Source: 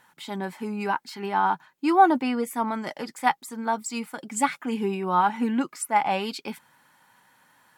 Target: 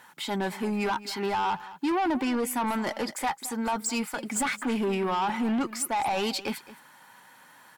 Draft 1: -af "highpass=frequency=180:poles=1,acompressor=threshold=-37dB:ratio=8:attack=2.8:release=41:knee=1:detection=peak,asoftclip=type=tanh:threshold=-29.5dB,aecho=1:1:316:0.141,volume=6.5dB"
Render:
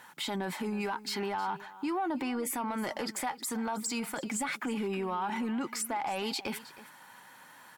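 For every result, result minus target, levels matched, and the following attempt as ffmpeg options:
downward compressor: peak gain reduction +10 dB; echo 99 ms late
-af "highpass=frequency=180:poles=1,acompressor=threshold=-25.5dB:ratio=8:attack=2.8:release=41:knee=1:detection=peak,asoftclip=type=tanh:threshold=-29.5dB,aecho=1:1:316:0.141,volume=6.5dB"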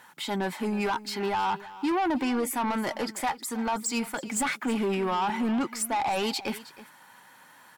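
echo 99 ms late
-af "highpass=frequency=180:poles=1,acompressor=threshold=-25.5dB:ratio=8:attack=2.8:release=41:knee=1:detection=peak,asoftclip=type=tanh:threshold=-29.5dB,aecho=1:1:217:0.141,volume=6.5dB"

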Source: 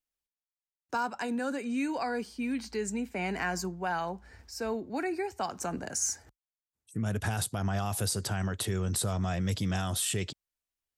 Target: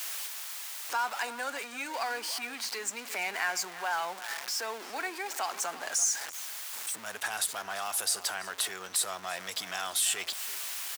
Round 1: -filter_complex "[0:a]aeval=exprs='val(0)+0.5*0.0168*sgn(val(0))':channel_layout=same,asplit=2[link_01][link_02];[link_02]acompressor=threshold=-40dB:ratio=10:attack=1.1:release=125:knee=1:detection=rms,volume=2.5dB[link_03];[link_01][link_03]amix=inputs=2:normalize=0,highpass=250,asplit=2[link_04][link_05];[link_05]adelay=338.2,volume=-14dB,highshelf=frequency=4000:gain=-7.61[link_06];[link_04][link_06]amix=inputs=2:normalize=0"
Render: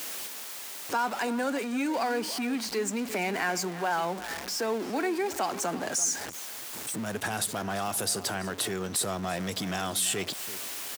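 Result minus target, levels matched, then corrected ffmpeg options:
250 Hz band +16.5 dB
-filter_complex "[0:a]aeval=exprs='val(0)+0.5*0.0168*sgn(val(0))':channel_layout=same,asplit=2[link_01][link_02];[link_02]acompressor=threshold=-40dB:ratio=10:attack=1.1:release=125:knee=1:detection=rms,volume=2.5dB[link_03];[link_01][link_03]amix=inputs=2:normalize=0,highpass=900,asplit=2[link_04][link_05];[link_05]adelay=338.2,volume=-14dB,highshelf=frequency=4000:gain=-7.61[link_06];[link_04][link_06]amix=inputs=2:normalize=0"

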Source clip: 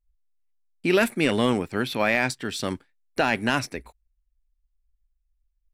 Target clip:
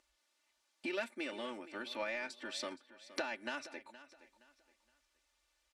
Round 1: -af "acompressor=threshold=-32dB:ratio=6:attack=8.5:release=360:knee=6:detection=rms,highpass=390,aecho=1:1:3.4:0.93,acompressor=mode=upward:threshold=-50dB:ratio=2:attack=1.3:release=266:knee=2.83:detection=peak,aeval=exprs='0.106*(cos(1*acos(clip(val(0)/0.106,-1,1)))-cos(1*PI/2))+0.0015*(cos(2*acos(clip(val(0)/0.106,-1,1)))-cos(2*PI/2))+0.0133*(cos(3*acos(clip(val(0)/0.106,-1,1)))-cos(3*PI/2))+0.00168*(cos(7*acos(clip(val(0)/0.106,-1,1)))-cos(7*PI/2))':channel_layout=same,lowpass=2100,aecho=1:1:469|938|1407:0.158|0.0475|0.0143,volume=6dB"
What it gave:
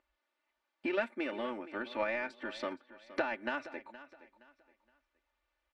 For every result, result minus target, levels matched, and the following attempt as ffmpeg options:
8,000 Hz band −16.5 dB; downward compressor: peak gain reduction −5 dB
-af "acompressor=threshold=-32dB:ratio=6:attack=8.5:release=360:knee=6:detection=rms,highpass=390,aecho=1:1:3.4:0.93,acompressor=mode=upward:threshold=-50dB:ratio=2:attack=1.3:release=266:knee=2.83:detection=peak,aeval=exprs='0.106*(cos(1*acos(clip(val(0)/0.106,-1,1)))-cos(1*PI/2))+0.0015*(cos(2*acos(clip(val(0)/0.106,-1,1)))-cos(2*PI/2))+0.0133*(cos(3*acos(clip(val(0)/0.106,-1,1)))-cos(3*PI/2))+0.00168*(cos(7*acos(clip(val(0)/0.106,-1,1)))-cos(7*PI/2))':channel_layout=same,lowpass=6900,aecho=1:1:469|938|1407:0.158|0.0475|0.0143,volume=6dB"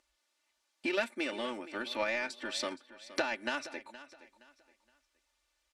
downward compressor: peak gain reduction −5 dB
-af "acompressor=threshold=-38dB:ratio=6:attack=8.5:release=360:knee=6:detection=rms,highpass=390,aecho=1:1:3.4:0.93,acompressor=mode=upward:threshold=-50dB:ratio=2:attack=1.3:release=266:knee=2.83:detection=peak,aeval=exprs='0.106*(cos(1*acos(clip(val(0)/0.106,-1,1)))-cos(1*PI/2))+0.0015*(cos(2*acos(clip(val(0)/0.106,-1,1)))-cos(2*PI/2))+0.0133*(cos(3*acos(clip(val(0)/0.106,-1,1)))-cos(3*PI/2))+0.00168*(cos(7*acos(clip(val(0)/0.106,-1,1)))-cos(7*PI/2))':channel_layout=same,lowpass=6900,aecho=1:1:469|938|1407:0.158|0.0475|0.0143,volume=6dB"

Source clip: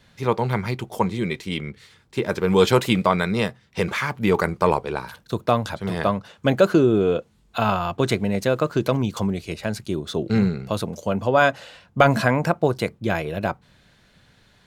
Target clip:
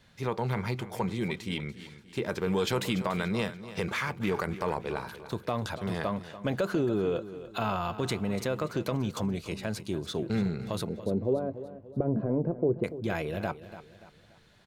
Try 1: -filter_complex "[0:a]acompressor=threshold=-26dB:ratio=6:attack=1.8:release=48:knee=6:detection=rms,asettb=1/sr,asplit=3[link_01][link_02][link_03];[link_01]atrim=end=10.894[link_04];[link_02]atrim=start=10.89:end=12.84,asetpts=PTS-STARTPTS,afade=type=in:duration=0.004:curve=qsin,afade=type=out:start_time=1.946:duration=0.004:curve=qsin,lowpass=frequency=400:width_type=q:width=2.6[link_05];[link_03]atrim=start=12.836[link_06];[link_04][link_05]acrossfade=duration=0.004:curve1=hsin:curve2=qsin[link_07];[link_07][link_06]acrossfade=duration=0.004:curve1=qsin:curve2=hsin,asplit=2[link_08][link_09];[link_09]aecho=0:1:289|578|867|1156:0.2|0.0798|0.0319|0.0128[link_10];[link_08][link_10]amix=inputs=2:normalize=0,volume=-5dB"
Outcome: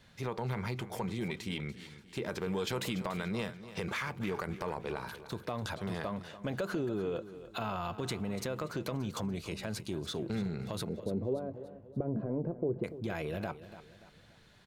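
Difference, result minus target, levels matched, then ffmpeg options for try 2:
downward compressor: peak gain reduction +6.5 dB
-filter_complex "[0:a]acompressor=threshold=-18dB:ratio=6:attack=1.8:release=48:knee=6:detection=rms,asettb=1/sr,asplit=3[link_01][link_02][link_03];[link_01]atrim=end=10.894[link_04];[link_02]atrim=start=10.89:end=12.84,asetpts=PTS-STARTPTS,afade=type=in:duration=0.004:curve=qsin,afade=type=out:start_time=1.946:duration=0.004:curve=qsin,lowpass=frequency=400:width_type=q:width=2.6[link_05];[link_03]atrim=start=12.836[link_06];[link_04][link_05]acrossfade=duration=0.004:curve1=hsin:curve2=qsin[link_07];[link_07][link_06]acrossfade=duration=0.004:curve1=qsin:curve2=hsin,asplit=2[link_08][link_09];[link_09]aecho=0:1:289|578|867|1156:0.2|0.0798|0.0319|0.0128[link_10];[link_08][link_10]amix=inputs=2:normalize=0,volume=-5dB"

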